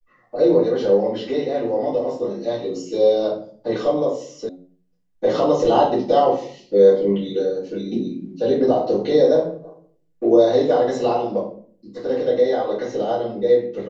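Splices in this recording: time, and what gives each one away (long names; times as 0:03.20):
0:04.49: cut off before it has died away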